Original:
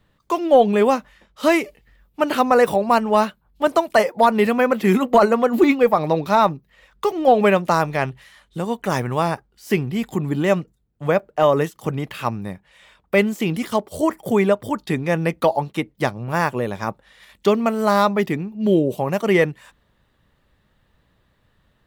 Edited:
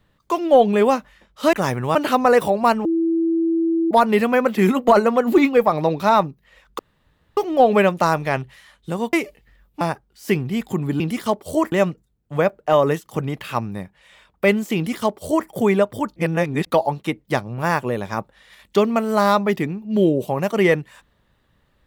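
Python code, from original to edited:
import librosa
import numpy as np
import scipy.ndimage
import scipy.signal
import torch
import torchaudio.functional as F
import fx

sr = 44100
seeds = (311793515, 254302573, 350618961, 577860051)

y = fx.edit(x, sr, fx.swap(start_s=1.53, length_s=0.68, other_s=8.81, other_length_s=0.42),
    fx.bleep(start_s=3.11, length_s=1.06, hz=330.0, db=-16.0),
    fx.insert_room_tone(at_s=7.05, length_s=0.58),
    fx.duplicate(start_s=13.46, length_s=0.72, to_s=10.42),
    fx.reverse_span(start_s=14.86, length_s=0.5), tone=tone)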